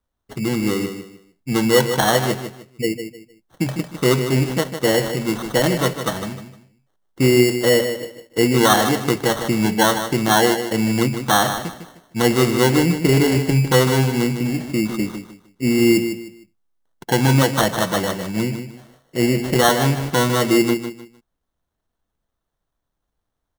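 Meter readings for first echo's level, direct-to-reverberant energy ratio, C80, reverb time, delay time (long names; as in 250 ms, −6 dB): −9.0 dB, no reverb audible, no reverb audible, no reverb audible, 153 ms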